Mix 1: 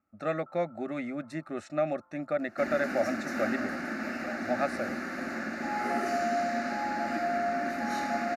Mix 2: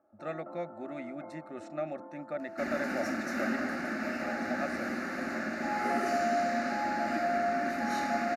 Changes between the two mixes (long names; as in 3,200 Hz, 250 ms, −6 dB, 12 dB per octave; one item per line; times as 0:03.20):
speech −7.0 dB
first sound: remove resonant band-pass 1,300 Hz, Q 7.6